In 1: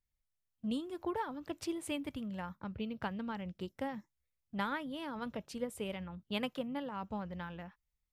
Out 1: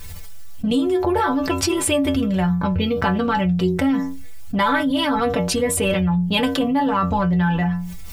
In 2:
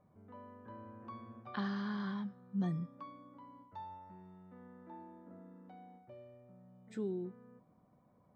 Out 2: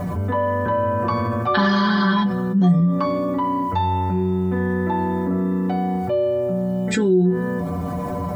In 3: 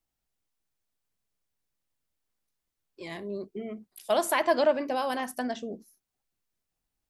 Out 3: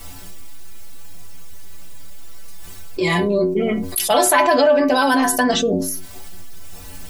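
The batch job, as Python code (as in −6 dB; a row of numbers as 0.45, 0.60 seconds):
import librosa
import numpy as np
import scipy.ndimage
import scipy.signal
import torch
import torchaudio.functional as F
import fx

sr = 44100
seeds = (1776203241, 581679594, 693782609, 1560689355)

y = fx.low_shelf(x, sr, hz=110.0, db=6.5)
y = fx.stiff_resonator(y, sr, f0_hz=87.0, decay_s=0.33, stiffness=0.008)
y = fx.env_flatten(y, sr, amount_pct=70)
y = y * 10.0 ** (-20 / 20.0) / np.sqrt(np.mean(np.square(y)))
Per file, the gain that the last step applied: +24.0, +22.0, +15.5 decibels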